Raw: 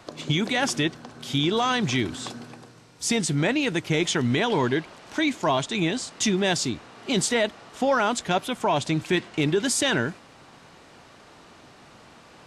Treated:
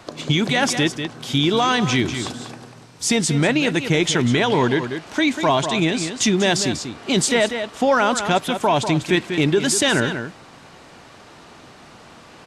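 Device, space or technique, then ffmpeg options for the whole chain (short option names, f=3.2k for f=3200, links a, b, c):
ducked delay: -filter_complex "[0:a]asplit=3[a][b][c];[b]adelay=193,volume=-8dB[d];[c]apad=whole_len=558337[e];[d][e]sidechaincompress=threshold=-25dB:ratio=8:attack=16:release=101[f];[a][f]amix=inputs=2:normalize=0,volume=5dB"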